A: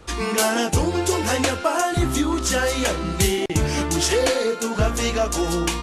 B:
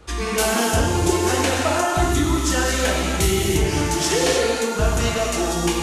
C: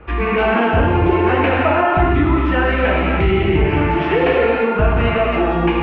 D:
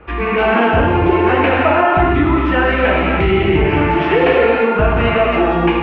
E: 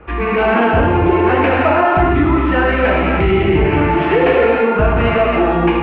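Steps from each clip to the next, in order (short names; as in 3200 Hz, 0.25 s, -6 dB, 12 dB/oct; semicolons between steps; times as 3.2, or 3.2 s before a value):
non-linear reverb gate 0.35 s flat, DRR -2 dB; gain -2.5 dB
in parallel at +0.5 dB: limiter -13.5 dBFS, peak gain reduction 7.5 dB; on the sum: elliptic low-pass 2600 Hz, stop band 80 dB; gain +1 dB
low shelf 140 Hz -5 dB; AGC gain up to 4 dB; gain +1 dB
in parallel at -9 dB: soft clip -12.5 dBFS, distortion -12 dB; on the sum: air absorption 190 m; gain -1 dB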